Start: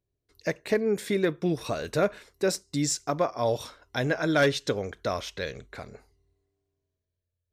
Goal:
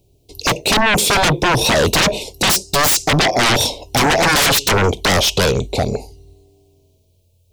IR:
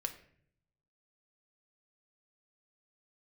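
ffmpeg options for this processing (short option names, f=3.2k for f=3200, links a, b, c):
-af "asuperstop=centerf=1500:order=8:qfactor=0.93,aeval=exprs='0.224*sin(PI/2*10*val(0)/0.224)':c=same,volume=2.5dB"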